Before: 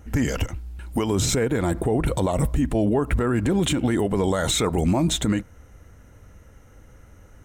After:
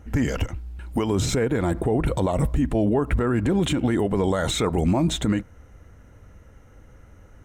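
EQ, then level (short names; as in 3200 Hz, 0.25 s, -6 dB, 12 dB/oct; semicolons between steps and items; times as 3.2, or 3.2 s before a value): high shelf 4800 Hz -7.5 dB; 0.0 dB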